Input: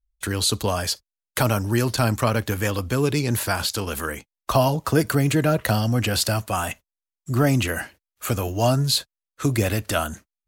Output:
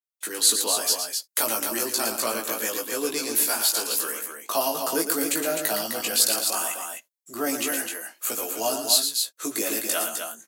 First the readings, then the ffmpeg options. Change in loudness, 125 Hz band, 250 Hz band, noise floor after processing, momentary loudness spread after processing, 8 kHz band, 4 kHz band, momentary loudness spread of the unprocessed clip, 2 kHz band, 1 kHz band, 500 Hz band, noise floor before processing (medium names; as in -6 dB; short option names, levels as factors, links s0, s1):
-1.0 dB, -31.0 dB, -8.5 dB, -73 dBFS, 9 LU, +7.0 dB, +1.5 dB, 10 LU, -3.5 dB, -4.5 dB, -4.5 dB, under -85 dBFS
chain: -filter_complex "[0:a]highpass=f=280:w=0.5412,highpass=f=280:w=1.3066,highshelf=f=5700:g=8,asplit=2[s0][s1];[s1]adelay=18,volume=0.708[s2];[s0][s2]amix=inputs=2:normalize=0,asplit=2[s3][s4];[s4]aecho=0:1:113.7|256.6:0.398|0.501[s5];[s3][s5]amix=inputs=2:normalize=0,adynamicequalizer=threshold=0.0224:dfrequency=4200:dqfactor=0.7:tfrequency=4200:tqfactor=0.7:attack=5:release=100:ratio=0.375:range=3.5:mode=boostabove:tftype=highshelf,volume=0.398"